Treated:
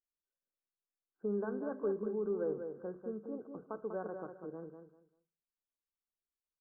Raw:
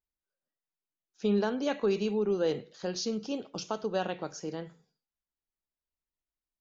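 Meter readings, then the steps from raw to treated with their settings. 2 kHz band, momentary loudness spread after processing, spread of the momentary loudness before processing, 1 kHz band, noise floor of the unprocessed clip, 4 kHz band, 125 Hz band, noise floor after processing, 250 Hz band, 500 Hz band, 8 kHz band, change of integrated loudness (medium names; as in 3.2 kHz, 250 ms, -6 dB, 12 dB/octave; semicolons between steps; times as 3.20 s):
-12.0 dB, 11 LU, 10 LU, -10.5 dB, under -85 dBFS, under -40 dB, -10.0 dB, under -85 dBFS, -8.5 dB, -6.5 dB, no reading, -7.5 dB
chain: rippled Chebyshev low-pass 1.6 kHz, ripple 6 dB; on a send: feedback delay 195 ms, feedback 23%, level -7 dB; on the sum: trim -6.5 dB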